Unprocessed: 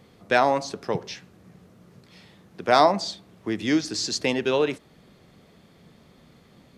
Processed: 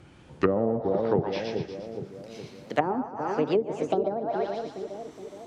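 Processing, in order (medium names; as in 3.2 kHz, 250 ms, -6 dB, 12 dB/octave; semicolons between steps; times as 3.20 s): gliding tape speed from 68% -> 180%; two-band feedback delay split 540 Hz, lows 418 ms, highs 118 ms, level -6 dB; low-pass that closes with the level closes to 340 Hz, closed at -18.5 dBFS; trim +2 dB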